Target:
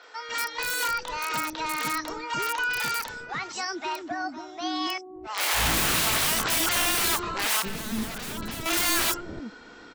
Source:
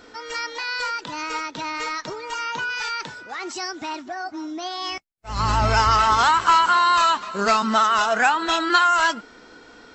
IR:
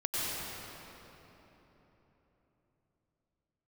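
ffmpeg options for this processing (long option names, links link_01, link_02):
-filter_complex "[0:a]aeval=exprs='(mod(8.41*val(0)+1,2)-1)/8.41':channel_layout=same,acrossover=split=490|5800[link_01][link_02][link_03];[link_03]adelay=30[link_04];[link_01]adelay=290[link_05];[link_05][link_02][link_04]amix=inputs=3:normalize=0,asettb=1/sr,asplit=3[link_06][link_07][link_08];[link_06]atrim=end=7.624[link_09];[link_07]atrim=start=7.62:end=8.66,asetpts=PTS-STARTPTS,afade=type=in:duration=0.004:curve=qsin,afade=type=out:start_time=1.036:duration=0.004:curve=qsin,acrossover=split=420[link_10][link_11];[link_11]acompressor=threshold=-41dB:ratio=2.5[link_12];[link_10][link_12]amix=inputs=2:normalize=0[link_13];[link_08]atrim=start=8.656[link_14];[link_09][link_13]acrossfade=duration=0.004:curve1=hsin:curve2=qsin[link_15];[link_15][link_14]acrossfade=duration=0.004:curve1=qsin:curve2=hsin"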